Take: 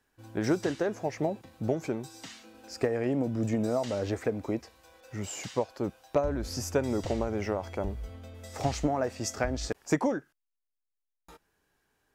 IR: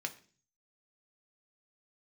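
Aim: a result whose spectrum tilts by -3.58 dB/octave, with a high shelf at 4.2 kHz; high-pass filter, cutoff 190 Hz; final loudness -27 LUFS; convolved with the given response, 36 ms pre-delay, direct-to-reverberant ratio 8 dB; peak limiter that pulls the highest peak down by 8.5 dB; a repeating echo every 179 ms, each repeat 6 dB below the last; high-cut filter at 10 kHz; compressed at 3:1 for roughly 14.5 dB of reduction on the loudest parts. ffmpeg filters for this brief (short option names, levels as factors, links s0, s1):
-filter_complex "[0:a]highpass=190,lowpass=10000,highshelf=f=4200:g=3.5,acompressor=threshold=0.00794:ratio=3,alimiter=level_in=2.82:limit=0.0631:level=0:latency=1,volume=0.355,aecho=1:1:179|358|537|716|895|1074:0.501|0.251|0.125|0.0626|0.0313|0.0157,asplit=2[s0][s1];[1:a]atrim=start_sample=2205,adelay=36[s2];[s1][s2]afir=irnorm=-1:irlink=0,volume=0.355[s3];[s0][s3]amix=inputs=2:normalize=0,volume=6.68"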